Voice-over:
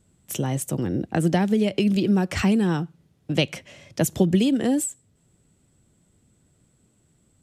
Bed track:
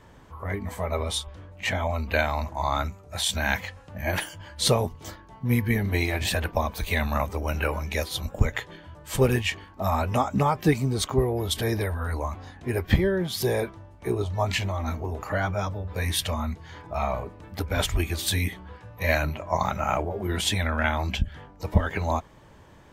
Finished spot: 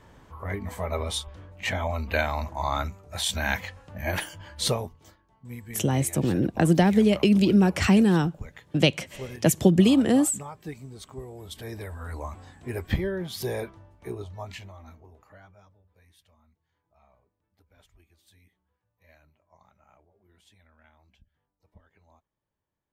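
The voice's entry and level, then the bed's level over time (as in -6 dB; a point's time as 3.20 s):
5.45 s, +1.5 dB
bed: 4.60 s -1.5 dB
5.18 s -17 dB
11.20 s -17 dB
12.25 s -5.5 dB
13.87 s -5.5 dB
16.18 s -35.5 dB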